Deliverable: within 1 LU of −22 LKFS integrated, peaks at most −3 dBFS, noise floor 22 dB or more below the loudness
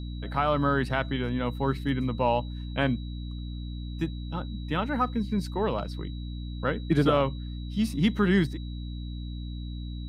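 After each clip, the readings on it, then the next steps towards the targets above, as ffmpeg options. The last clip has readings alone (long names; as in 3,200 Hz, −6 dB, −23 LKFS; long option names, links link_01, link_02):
mains hum 60 Hz; hum harmonics up to 300 Hz; level of the hum −33 dBFS; interfering tone 3,900 Hz; level of the tone −50 dBFS; integrated loudness −29.0 LKFS; sample peak −11.0 dBFS; target loudness −22.0 LKFS
→ -af "bandreject=frequency=60:width_type=h:width=4,bandreject=frequency=120:width_type=h:width=4,bandreject=frequency=180:width_type=h:width=4,bandreject=frequency=240:width_type=h:width=4,bandreject=frequency=300:width_type=h:width=4"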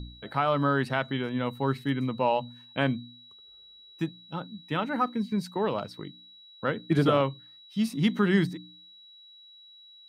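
mains hum none found; interfering tone 3,900 Hz; level of the tone −50 dBFS
→ -af "bandreject=frequency=3900:width=30"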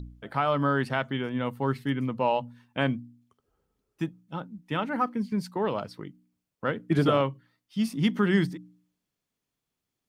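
interfering tone none found; integrated loudness −28.5 LKFS; sample peak −12.0 dBFS; target loudness −22.0 LKFS
→ -af "volume=6.5dB"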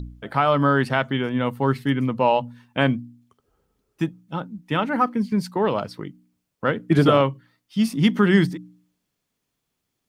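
integrated loudness −22.0 LKFS; sample peak −5.5 dBFS; background noise floor −79 dBFS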